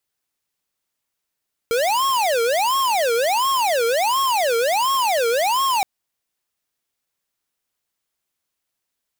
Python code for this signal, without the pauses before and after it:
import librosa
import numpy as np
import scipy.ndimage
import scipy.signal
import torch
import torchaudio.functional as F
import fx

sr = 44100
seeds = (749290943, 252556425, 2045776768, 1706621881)

y = fx.siren(sr, length_s=4.12, kind='wail', low_hz=458.0, high_hz=1090.0, per_s=1.4, wave='square', level_db=-19.0)